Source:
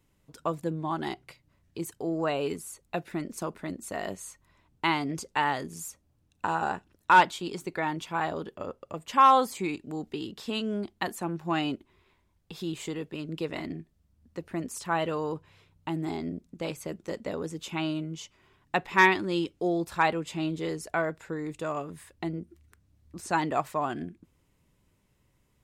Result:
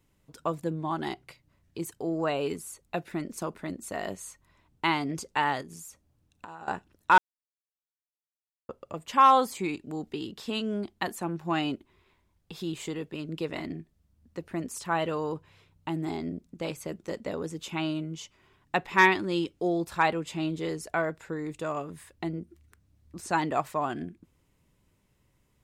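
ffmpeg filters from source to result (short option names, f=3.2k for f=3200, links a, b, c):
-filter_complex "[0:a]asettb=1/sr,asplit=3[a][b][c];[a]atrim=end=5.614[d];[b]atrim=start=5.61:end=6.68,asetpts=PTS-STARTPTS,afade=t=in:d=0.004:c=qsin,afade=t=out:st=1.066:d=0.004:c=qsin,acompressor=threshold=-41dB:ratio=6:attack=3.2:release=140:knee=1:detection=peak[e];[c]atrim=start=6.676[f];[d][e]acrossfade=d=0.004:c1=hsin:c2=qsin[g];[g][f]acrossfade=d=0.004:c1=qsin:c2=hsin,asplit=3[h][i][j];[h]atrim=end=7.18,asetpts=PTS-STARTPTS,afade=t=out:st=7.176:d=0.004:c=hsin[k];[i]atrim=start=7.18:end=8.69,asetpts=PTS-STARTPTS,volume=0[l];[j]atrim=start=8.69,asetpts=PTS-STARTPTS,afade=t=in:d=0.004:c=hsin[m];[k][l][m]concat=n=3:v=0:a=1"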